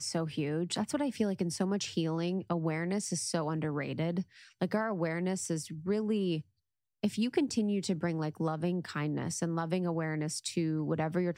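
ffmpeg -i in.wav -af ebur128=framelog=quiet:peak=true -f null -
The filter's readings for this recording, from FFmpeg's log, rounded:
Integrated loudness:
  I:         -33.3 LUFS
  Threshold: -43.3 LUFS
Loudness range:
  LRA:         1.1 LU
  Threshold: -53.5 LUFS
  LRA low:   -34.1 LUFS
  LRA high:  -33.0 LUFS
True peak:
  Peak:      -15.8 dBFS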